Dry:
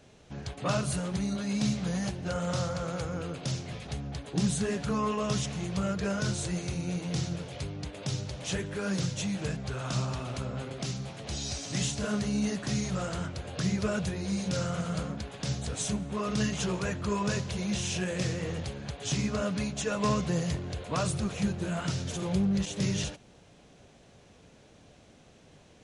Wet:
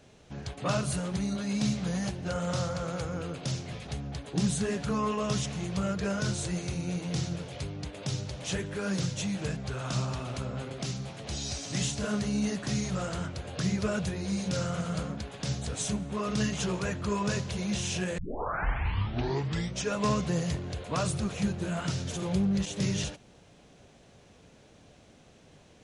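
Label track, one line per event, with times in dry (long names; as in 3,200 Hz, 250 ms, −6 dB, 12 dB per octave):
18.180000	18.180000	tape start 1.76 s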